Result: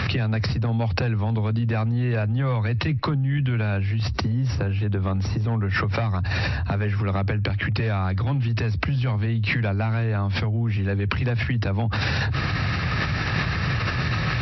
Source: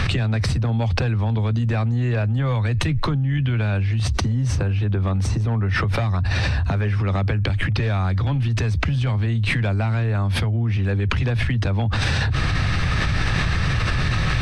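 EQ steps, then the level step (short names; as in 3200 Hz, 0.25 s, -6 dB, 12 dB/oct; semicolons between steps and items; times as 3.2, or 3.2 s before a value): HPF 90 Hz; brick-wall FIR low-pass 5800 Hz; dynamic EQ 3400 Hz, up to -6 dB, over -51 dBFS, Q 6.6; -1.0 dB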